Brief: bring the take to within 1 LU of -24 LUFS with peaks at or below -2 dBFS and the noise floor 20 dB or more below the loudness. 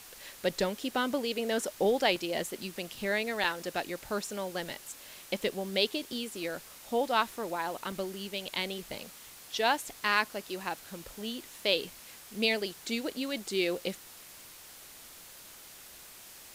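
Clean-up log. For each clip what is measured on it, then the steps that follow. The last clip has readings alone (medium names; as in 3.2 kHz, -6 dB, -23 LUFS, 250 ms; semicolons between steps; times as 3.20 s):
dropouts 3; longest dropout 2.0 ms; noise floor -51 dBFS; noise floor target -53 dBFS; loudness -32.5 LUFS; peak level -12.0 dBFS; loudness target -24.0 LUFS
-> interpolate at 2.16/3.44/7.92 s, 2 ms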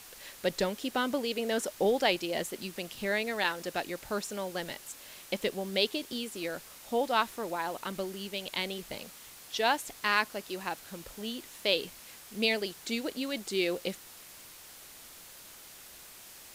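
dropouts 0; noise floor -51 dBFS; noise floor target -53 dBFS
-> noise print and reduce 6 dB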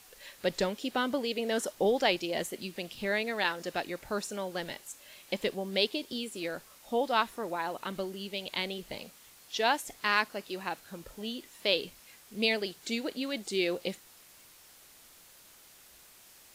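noise floor -57 dBFS; loudness -32.5 LUFS; peak level -12.0 dBFS; loudness target -24.0 LUFS
-> trim +8.5 dB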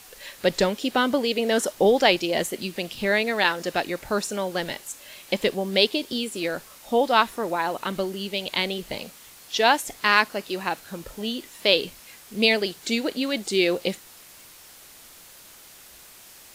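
loudness -24.0 LUFS; peak level -3.5 dBFS; noise floor -48 dBFS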